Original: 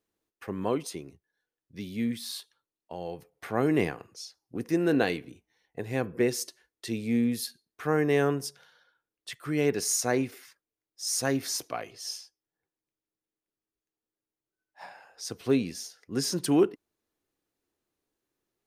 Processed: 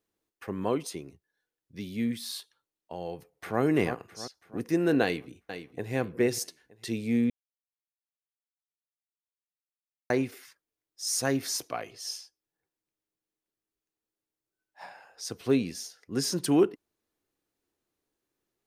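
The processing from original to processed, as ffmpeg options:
-filter_complex "[0:a]asplit=2[a][b];[b]afade=t=in:st=3.13:d=0.01,afade=t=out:st=3.61:d=0.01,aecho=0:1:330|660|990|1320|1650|1980:0.375837|0.187919|0.0939594|0.0469797|0.0234898|0.0117449[c];[a][c]amix=inputs=2:normalize=0,asplit=2[d][e];[e]afade=t=in:st=5.03:d=0.01,afade=t=out:st=5.92:d=0.01,aecho=0:1:460|920|1380:0.316228|0.0790569|0.0197642[f];[d][f]amix=inputs=2:normalize=0,asplit=3[g][h][i];[g]atrim=end=7.3,asetpts=PTS-STARTPTS,afade=t=out:st=7.296:d=0.004:c=hsin[j];[h]atrim=start=7.3:end=10.1,asetpts=PTS-STARTPTS,volume=0[k];[i]atrim=start=10.1,asetpts=PTS-STARTPTS,afade=t=in:d=0.004:c=hsin[l];[j][k][l]concat=n=3:v=0:a=1"

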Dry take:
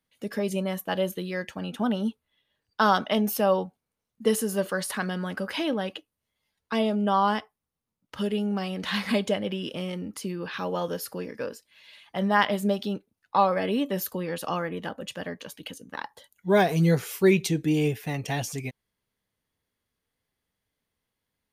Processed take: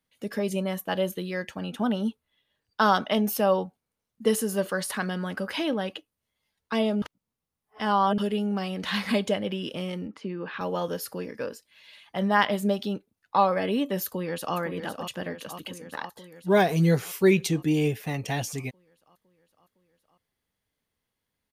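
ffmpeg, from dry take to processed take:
-filter_complex "[0:a]asettb=1/sr,asplit=3[a][b][c];[a]atrim=end=10.074[d];[b]atrim=start=10.07:end=10.61,asetpts=PTS-STARTPTS,afade=t=in:d=0.004:c=qsin,afade=t=out:st=0.536:d=0.004:c=qsin,highpass=160,lowpass=2.5k[e];[c]atrim=start=10.606[f];[d][e]acrossfade=d=0.004:c1=hsin:c2=qsin[g];[g][f]acrossfade=d=0.004:c1=qsin:c2=hsin,asplit=2[h][i];[i]afade=t=in:st=14.05:d=0.01,afade=t=out:st=14.56:d=0.01,aecho=0:1:510|1020|1530|2040|2550|3060|3570|4080|4590|5100|5610:0.398107|0.278675|0.195073|0.136551|0.0955855|0.0669099|0.0468369|0.0327858|0.0229501|0.0160651|0.0112455[j];[h][j]amix=inputs=2:normalize=0,asplit=3[k][l][m];[k]atrim=end=7.022[n];[l]atrim=start=7.018:end=8.182,asetpts=PTS-STARTPTS,areverse[o];[m]atrim=start=8.178[p];[n][o]acrossfade=d=0.004:c1=hsin:c2=hsin[q];[q][p]acrossfade=d=0.004:c1=hsin:c2=hsin"

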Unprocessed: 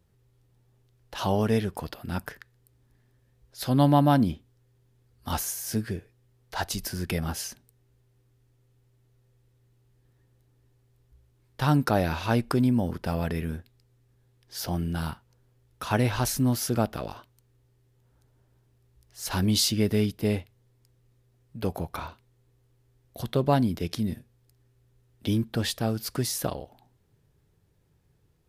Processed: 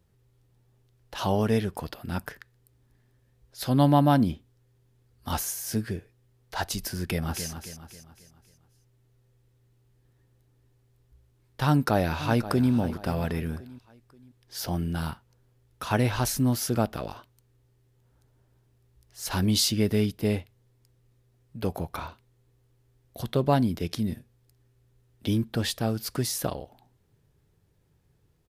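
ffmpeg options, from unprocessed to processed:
-filter_complex "[0:a]asplit=2[a][b];[b]afade=t=in:st=7.03:d=0.01,afade=t=out:st=7.49:d=0.01,aecho=0:1:270|540|810|1080|1350:0.354813|0.159666|0.0718497|0.0323324|0.0145496[c];[a][c]amix=inputs=2:normalize=0,asplit=2[d][e];[e]afade=t=in:st=11.66:d=0.01,afade=t=out:st=12.72:d=0.01,aecho=0:1:530|1060|1590:0.211349|0.0739721|0.0258902[f];[d][f]amix=inputs=2:normalize=0"

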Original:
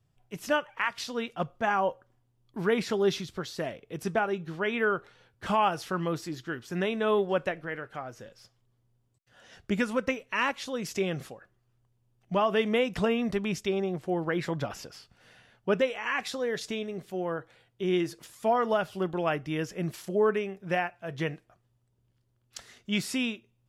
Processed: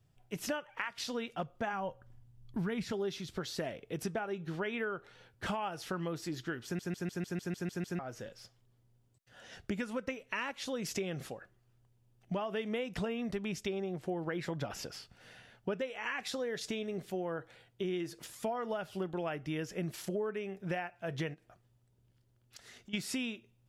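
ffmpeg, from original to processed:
-filter_complex "[0:a]asplit=3[a][b][c];[a]afade=t=out:st=1.72:d=0.02[d];[b]asubboost=boost=7.5:cutoff=160,afade=t=in:st=1.72:d=0.02,afade=t=out:st=2.91:d=0.02[e];[c]afade=t=in:st=2.91:d=0.02[f];[d][e][f]amix=inputs=3:normalize=0,asplit=3[g][h][i];[g]afade=t=out:st=21.33:d=0.02[j];[h]acompressor=threshold=-51dB:ratio=6:attack=3.2:release=140:knee=1:detection=peak,afade=t=in:st=21.33:d=0.02,afade=t=out:st=22.93:d=0.02[k];[i]afade=t=in:st=22.93:d=0.02[l];[j][k][l]amix=inputs=3:normalize=0,asplit=10[m][n][o][p][q][r][s][t][u][v];[m]atrim=end=6.792[w];[n]atrim=start=6.638:end=6.792[x];[o]atrim=start=6.638:end=6.792[y];[p]atrim=start=6.638:end=6.792[z];[q]atrim=start=6.638:end=6.792[aa];[r]atrim=start=6.638:end=6.792[ab];[s]atrim=start=6.638:end=6.792[ac];[t]atrim=start=6.638:end=6.792[ad];[u]atrim=start=6.638:end=6.792[ae];[v]atrim=start=7.988[af];[w][x]acrossfade=d=0.004:c1=hsin:c2=hsin[ag];[ag][y]acrossfade=d=0.004:c1=hsin:c2=hsin[ah];[ah][z]acrossfade=d=0.004:c1=hsin:c2=hsin[ai];[ai][aa]acrossfade=d=0.004:c1=hsin:c2=hsin[aj];[aj][ab]acrossfade=d=0.004:c1=hsin:c2=hsin[ak];[ak][ac]acrossfade=d=0.004:c1=hsin:c2=hsin[al];[al][ad]acrossfade=d=0.004:c1=hsin:c2=hsin[am];[am][ae]acrossfade=d=0.004:c1=hsin:c2=hsin[an];[an][af]acrossfade=d=0.004:c1=hsin:c2=hsin,acompressor=threshold=-35dB:ratio=6,equalizer=f=1.1k:w=5.4:g=-4,volume=1.5dB"

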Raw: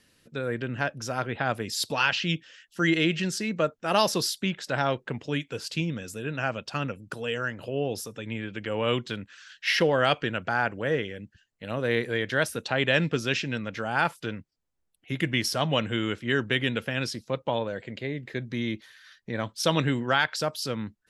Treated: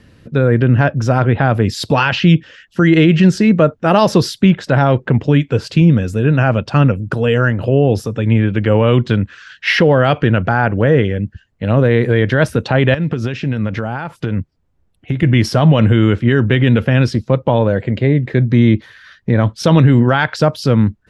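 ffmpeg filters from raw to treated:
-filter_complex "[0:a]asettb=1/sr,asplit=3[a][b][c];[a]atrim=end=12.944[d];[b]atrim=start=12.94:end=15.23,asetpts=PTS-STARTPTS,afade=t=in:d=0.004:c=qsin,afade=t=out:st=2.286:d=0.004:c=qsin,acompressor=threshold=-33dB:ratio=16:attack=3.2:release=140:knee=1:detection=peak[e];[c]atrim=start=15.226[f];[d][e]acrossfade=d=0.004:c1=hsin:c2=qsin[g];[g][f]acrossfade=d=0.004:c1=qsin:c2=hsin,lowpass=f=1.3k:p=1,equalizer=f=76:t=o:w=2.4:g=10.5,alimiter=level_in=17.5dB:limit=-1dB:release=50:level=0:latency=1,volume=-1dB"

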